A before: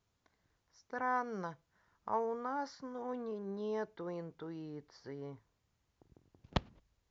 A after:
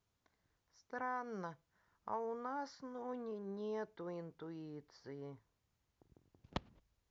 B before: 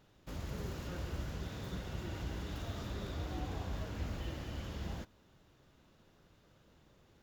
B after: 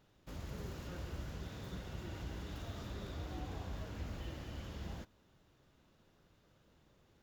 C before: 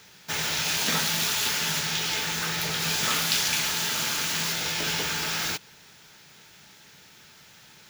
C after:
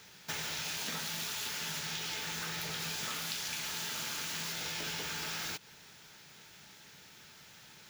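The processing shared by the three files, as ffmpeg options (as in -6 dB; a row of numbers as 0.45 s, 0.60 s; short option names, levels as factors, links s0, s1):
-af "acompressor=threshold=0.0251:ratio=6,volume=0.668"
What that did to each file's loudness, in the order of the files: -5.0 LU, -3.5 LU, -11.5 LU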